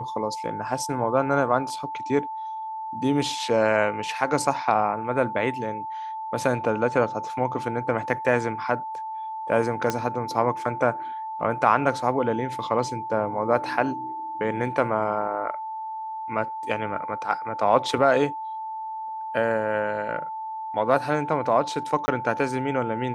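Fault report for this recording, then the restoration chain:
whine 880 Hz -30 dBFS
9.90 s: pop -10 dBFS
22.06–22.08 s: dropout 20 ms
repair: de-click; band-stop 880 Hz, Q 30; interpolate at 22.06 s, 20 ms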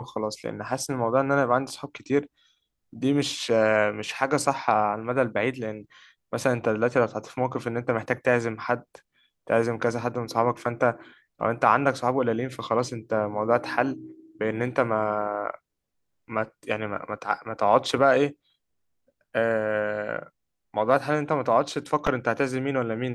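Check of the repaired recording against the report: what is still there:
nothing left

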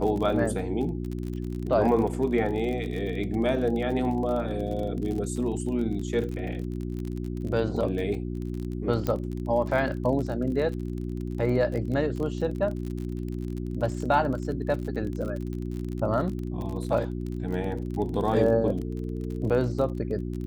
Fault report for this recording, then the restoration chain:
crackle 36 per s -32 dBFS
hum 60 Hz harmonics 6 -32 dBFS
9.07 s: pop -15 dBFS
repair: de-click; de-hum 60 Hz, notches 6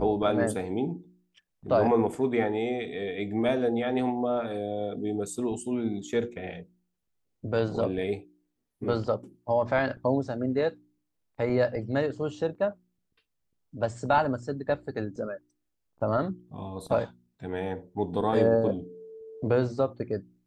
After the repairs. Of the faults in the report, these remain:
nothing left

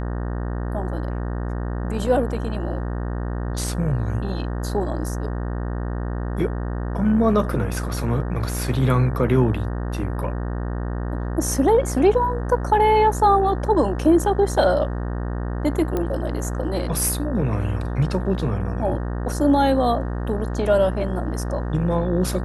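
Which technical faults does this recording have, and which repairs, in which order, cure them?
buzz 60 Hz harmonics 31 -26 dBFS
15.97 s: pop -12 dBFS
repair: de-click; de-hum 60 Hz, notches 31

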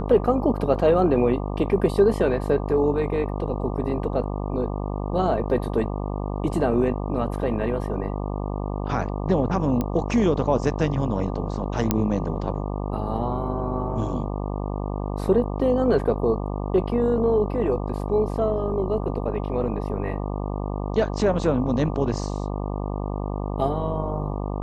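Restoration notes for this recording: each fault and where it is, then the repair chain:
buzz 50 Hz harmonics 24 -28 dBFS
9.81 s: pop -13 dBFS
11.91 s: pop -5 dBFS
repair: de-click; de-hum 50 Hz, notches 24

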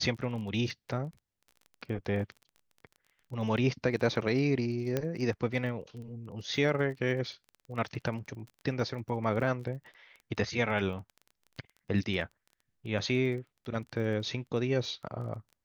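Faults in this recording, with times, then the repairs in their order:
crackle 20 per s -41 dBFS
4.97 s: pop -16 dBFS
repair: de-click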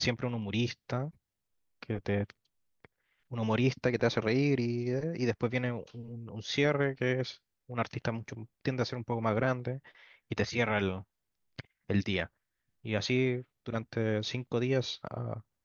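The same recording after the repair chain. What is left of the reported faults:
nothing left

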